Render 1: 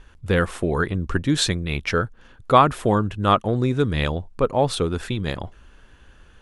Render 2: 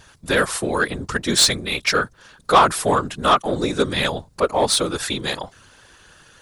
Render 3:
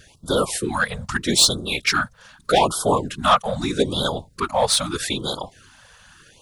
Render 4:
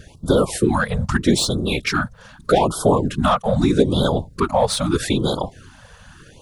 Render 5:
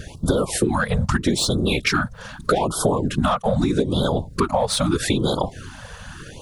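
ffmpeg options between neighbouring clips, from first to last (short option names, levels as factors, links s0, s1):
-filter_complex "[0:a]afftfilt=real='hypot(re,im)*cos(2*PI*random(0))':imag='hypot(re,im)*sin(2*PI*random(1))':win_size=512:overlap=0.75,aexciter=amount=4.4:drive=2.4:freq=4000,asplit=2[s0][s1];[s1]highpass=f=720:p=1,volume=6.31,asoftclip=type=tanh:threshold=0.531[s2];[s0][s2]amix=inputs=2:normalize=0,lowpass=f=5700:p=1,volume=0.501,volume=1.26"
-af "afftfilt=real='re*(1-between(b*sr/1024,300*pow(2200/300,0.5+0.5*sin(2*PI*0.8*pts/sr))/1.41,300*pow(2200/300,0.5+0.5*sin(2*PI*0.8*pts/sr))*1.41))':imag='im*(1-between(b*sr/1024,300*pow(2200/300,0.5+0.5*sin(2*PI*0.8*pts/sr))/1.41,300*pow(2200/300,0.5+0.5*sin(2*PI*0.8*pts/sr))*1.41))':win_size=1024:overlap=0.75"
-af "acompressor=threshold=0.0794:ratio=2.5,tiltshelf=f=840:g=6,volume=1.88"
-af "acompressor=threshold=0.0631:ratio=6,volume=2.24"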